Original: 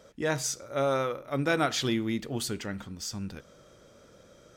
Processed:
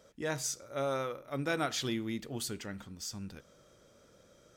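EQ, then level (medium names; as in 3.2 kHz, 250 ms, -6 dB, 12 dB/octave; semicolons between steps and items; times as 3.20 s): treble shelf 5.7 kHz +4.5 dB; -6.5 dB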